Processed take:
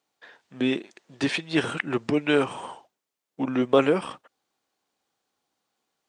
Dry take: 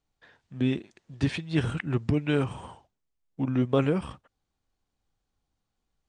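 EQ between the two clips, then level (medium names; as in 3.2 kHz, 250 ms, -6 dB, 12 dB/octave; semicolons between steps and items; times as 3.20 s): high-pass 340 Hz 12 dB/octave; +7.5 dB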